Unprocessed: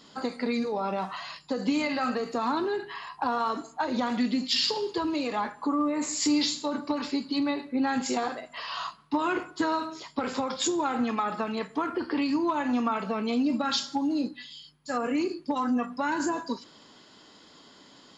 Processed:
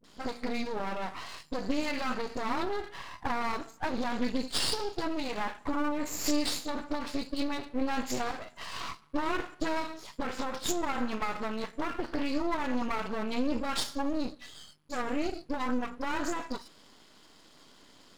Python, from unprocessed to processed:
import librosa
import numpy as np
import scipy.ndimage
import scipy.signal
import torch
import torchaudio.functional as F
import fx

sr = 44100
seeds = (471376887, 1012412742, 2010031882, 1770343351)

y = fx.dispersion(x, sr, late='highs', ms=41.0, hz=370.0)
y = np.maximum(y, 0.0)